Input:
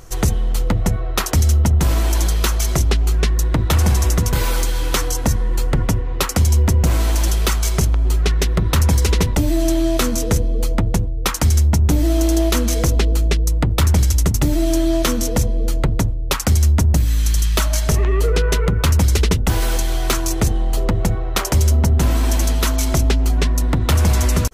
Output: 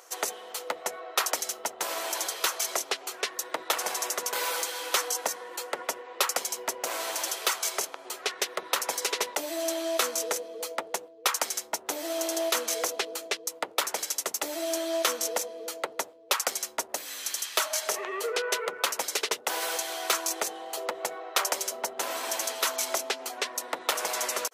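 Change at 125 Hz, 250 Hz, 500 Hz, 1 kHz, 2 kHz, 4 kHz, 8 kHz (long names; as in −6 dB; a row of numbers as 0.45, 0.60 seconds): below −40 dB, −21.5 dB, −8.0 dB, −4.5 dB, −4.5 dB, −4.5 dB, −4.5 dB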